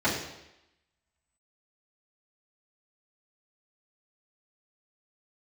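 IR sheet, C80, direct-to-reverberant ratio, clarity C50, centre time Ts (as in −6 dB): 7.0 dB, −10.0 dB, 4.0 dB, 41 ms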